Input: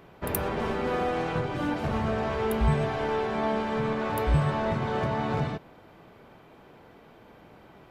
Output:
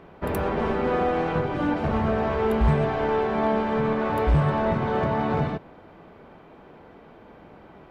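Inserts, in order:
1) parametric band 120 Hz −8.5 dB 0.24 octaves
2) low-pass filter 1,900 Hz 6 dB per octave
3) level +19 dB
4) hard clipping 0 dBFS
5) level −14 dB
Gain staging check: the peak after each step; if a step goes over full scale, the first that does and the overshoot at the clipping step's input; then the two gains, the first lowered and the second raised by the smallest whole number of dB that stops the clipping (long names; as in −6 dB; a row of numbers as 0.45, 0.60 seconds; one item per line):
−11.5, −13.5, +5.5, 0.0, −14.0 dBFS
step 3, 5.5 dB
step 3 +13 dB, step 5 −8 dB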